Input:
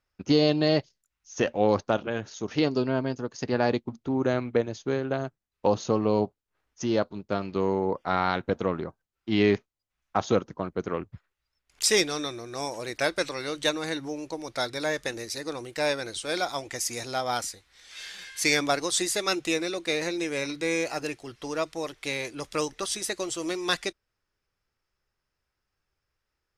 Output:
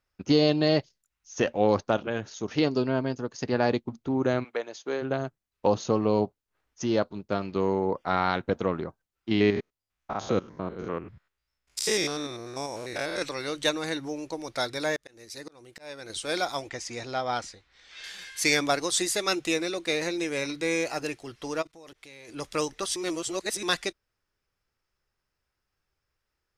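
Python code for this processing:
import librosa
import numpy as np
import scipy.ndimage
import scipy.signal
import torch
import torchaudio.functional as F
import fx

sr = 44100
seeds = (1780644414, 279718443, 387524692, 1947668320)

y = fx.highpass(x, sr, hz=fx.line((4.43, 860.0), (5.01, 330.0)), slope=12, at=(4.43, 5.01), fade=0.02)
y = fx.spec_steps(y, sr, hold_ms=100, at=(9.31, 13.22))
y = fx.auto_swell(y, sr, attack_ms=609.0, at=(14.96, 16.1))
y = fx.air_absorb(y, sr, metres=120.0, at=(16.69, 18.04))
y = fx.level_steps(y, sr, step_db=24, at=(21.61, 22.28), fade=0.02)
y = fx.edit(y, sr, fx.reverse_span(start_s=22.96, length_s=0.67), tone=tone)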